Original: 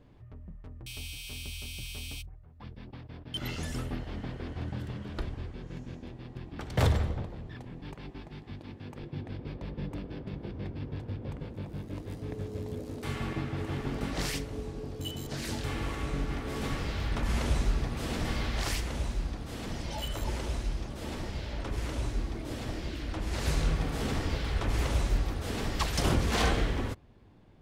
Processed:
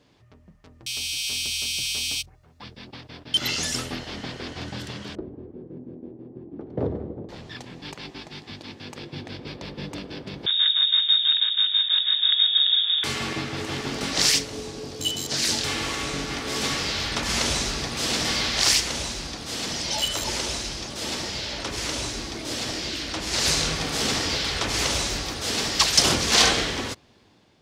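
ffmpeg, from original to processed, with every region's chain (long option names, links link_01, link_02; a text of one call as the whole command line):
ffmpeg -i in.wav -filter_complex "[0:a]asettb=1/sr,asplit=3[link_01][link_02][link_03];[link_01]atrim=end=5.154[link_04];[link_02]atrim=start=5.15:end=7.29,asetpts=PTS-STARTPTS,afade=type=in:duration=0.004:curve=qsin,afade=type=out:start_time=2.136:duration=0.004:curve=qsin,lowpass=frequency=370:width_type=q:width=1.7,lowshelf=frequency=110:gain=-10.5[link_05];[link_03]atrim=start=7.286[link_06];[link_04][link_05]acrossfade=duration=0.004:curve1=hsin:curve2=qsin[link_07];[link_07][link_06]acrossfade=duration=0.004:curve1=qsin:curve2=hsin,asettb=1/sr,asplit=3[link_08][link_09][link_10];[link_08]atrim=end=10.464[link_11];[link_09]atrim=start=10.46:end=13.04,asetpts=PTS-STARTPTS,afade=type=in:duration=0.004:curve=qsin,afade=type=out:start_time=2.576:duration=0.004:curve=qsin,equalizer=frequency=2200:width_type=o:width=0.59:gain=11.5,lowpass=frequency=3200:width_type=q:width=0.5098,lowpass=frequency=3200:width_type=q:width=0.6013,lowpass=frequency=3200:width_type=q:width=0.9,lowpass=frequency=3200:width_type=q:width=2.563,afreqshift=-3800[link_12];[link_10]atrim=start=13.036[link_13];[link_11][link_12]acrossfade=duration=0.004:curve1=hsin:curve2=qsin[link_14];[link_14][link_13]acrossfade=duration=0.004:curve1=qsin:curve2=hsin,highpass=frequency=250:poles=1,equalizer=frequency=5400:width_type=o:width=1.9:gain=14,dynaudnorm=framelen=630:gausssize=3:maxgain=5.5dB,volume=1dB" out.wav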